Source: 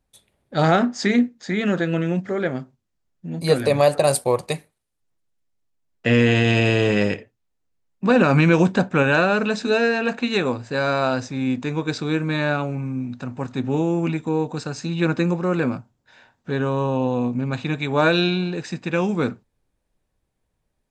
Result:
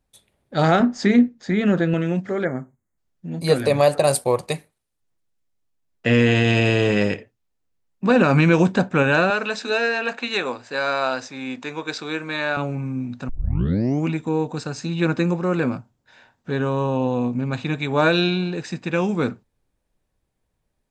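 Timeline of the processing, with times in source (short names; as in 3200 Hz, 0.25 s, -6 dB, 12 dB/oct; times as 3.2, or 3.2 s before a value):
0.8–1.94 tilt -1.5 dB/oct
2.44–2.98 spectral gain 2300–6200 Hz -23 dB
9.3–12.57 weighting filter A
13.29 tape start 0.78 s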